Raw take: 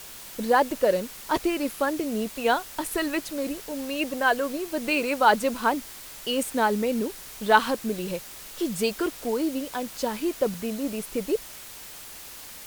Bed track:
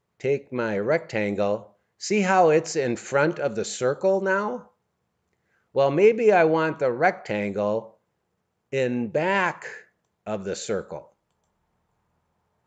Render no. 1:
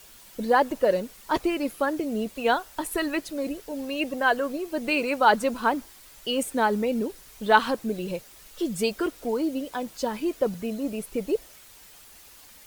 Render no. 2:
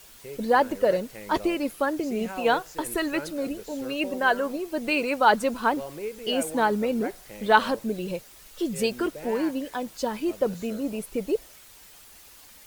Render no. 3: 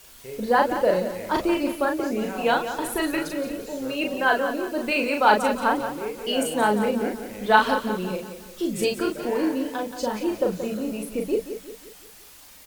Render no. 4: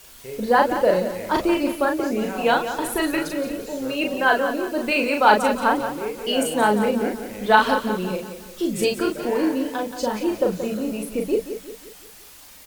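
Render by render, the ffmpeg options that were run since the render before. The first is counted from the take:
-af "afftdn=nr=9:nf=-42"
-filter_complex "[1:a]volume=-17dB[a];[0:a][a]amix=inputs=2:normalize=0"
-filter_complex "[0:a]asplit=2[a][b];[b]adelay=38,volume=-3.5dB[c];[a][c]amix=inputs=2:normalize=0,aecho=1:1:177|354|531|708|885:0.316|0.139|0.0612|0.0269|0.0119"
-af "volume=2.5dB,alimiter=limit=-2dB:level=0:latency=1"

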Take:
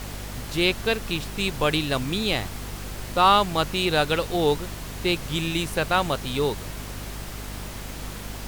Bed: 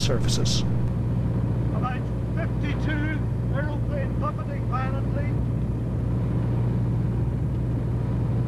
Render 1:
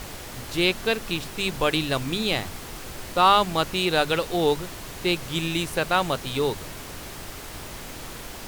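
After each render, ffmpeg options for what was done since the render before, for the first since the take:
-af "bandreject=f=50:t=h:w=6,bandreject=f=100:t=h:w=6,bandreject=f=150:t=h:w=6,bandreject=f=200:t=h:w=6,bandreject=f=250:t=h:w=6"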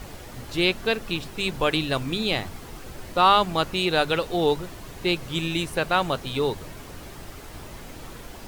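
-af "afftdn=nr=7:nf=-39"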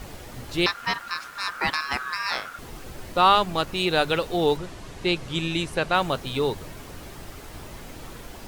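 -filter_complex "[0:a]asettb=1/sr,asplit=3[a][b][c];[a]atrim=end=0.664[d];[b]atrim=start=0.66:end=2.59,asetpts=PTS-STARTPTS,afade=t=in:d=0.004:c=qsin,afade=t=out:st=1.926:d=0.004:c=qsin,aeval=exprs='val(0)*sin(2*PI*1400*n/s)':c=same[e];[c]atrim=start=2.586[f];[d][e]acrossfade=d=0.004:c1=hsin:c2=qsin[g];[g][f]acrossfade=d=0.004:c1=qsin:c2=hsin,asettb=1/sr,asplit=3[h][i][j];[h]atrim=end=3.354[k];[i]atrim=start=3.35:end=3.8,asetpts=PTS-STARTPTS,afade=t=in:d=0.004:c=qsin,afade=t=out:st=0.446:d=0.004:c=qsin,aeval=exprs='if(lt(val(0),0),0.708*val(0),val(0))':c=same[l];[j]atrim=start=3.796[m];[k][l]acrossfade=d=0.004:c1=hsin:c2=qsin[n];[n][m]acrossfade=d=0.004:c1=qsin:c2=hsin,asettb=1/sr,asplit=3[o][p][q];[o]atrim=end=4.574[r];[p]atrim=start=4.57:end=5.95,asetpts=PTS-STARTPTS,afade=t=in:d=0.004:c=qsin,afade=t=out:st=1.376:d=0.004:c=qsin,lowpass=9.2k[s];[q]atrim=start=5.946[t];[r][s]acrossfade=d=0.004:c1=hsin:c2=qsin[u];[u][t]acrossfade=d=0.004:c1=qsin:c2=hsin"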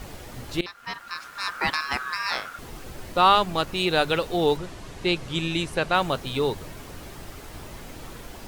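-filter_complex "[0:a]asplit=2[a][b];[a]atrim=end=0.61,asetpts=PTS-STARTPTS,afade=t=out:st=0.606:d=0.004:c=hsin:silence=0.105925[c];[b]atrim=start=0.61,asetpts=PTS-STARTPTS,afade=t=in:d=0.88:silence=0.105925[d];[c][d]concat=n=2:v=0:a=1"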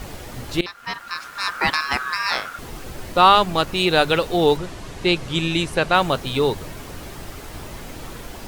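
-af "volume=5dB,alimiter=limit=-1dB:level=0:latency=1"

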